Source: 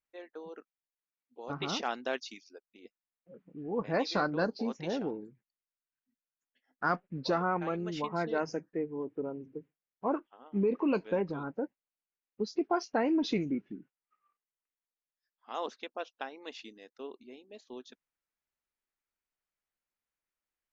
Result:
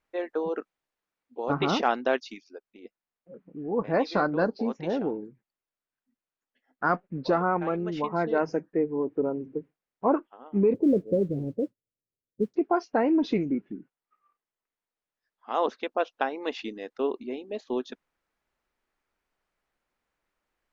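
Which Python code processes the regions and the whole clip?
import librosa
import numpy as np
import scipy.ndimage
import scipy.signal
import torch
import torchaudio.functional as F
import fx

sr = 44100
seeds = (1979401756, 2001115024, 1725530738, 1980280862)

y = fx.chain(x, sr, fx.steep_lowpass(hz=590.0, slope=48),
    fx.peak_eq(hz=110.0, db=14.5, octaves=0.85),
    fx.mod_noise(seeds[0], snr_db=31), at=(10.74, 12.54))
y = fx.lowpass(y, sr, hz=1400.0, slope=6)
y = fx.peak_eq(y, sr, hz=110.0, db=-4.0, octaves=1.8)
y = fx.rider(y, sr, range_db=10, speed_s=2.0)
y = F.gain(torch.from_numpy(y), 7.0).numpy()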